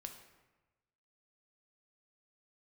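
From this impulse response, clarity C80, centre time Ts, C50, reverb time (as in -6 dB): 10.0 dB, 22 ms, 7.5 dB, 1.1 s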